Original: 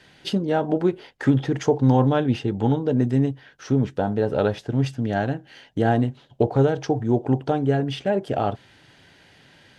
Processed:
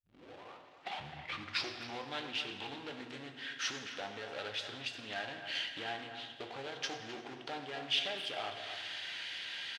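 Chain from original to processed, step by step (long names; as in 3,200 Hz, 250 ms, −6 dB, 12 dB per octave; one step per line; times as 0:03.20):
turntable start at the beginning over 2.05 s
downward compressor 3 to 1, threshold −33 dBFS, peak gain reduction 15.5 dB
power curve on the samples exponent 0.7
resonant band-pass 3,200 Hz, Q 1.5
far-end echo of a speakerphone 260 ms, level −10 dB
convolution reverb RT60 1.8 s, pre-delay 5 ms, DRR 5 dB
highs frequency-modulated by the lows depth 0.21 ms
level +4.5 dB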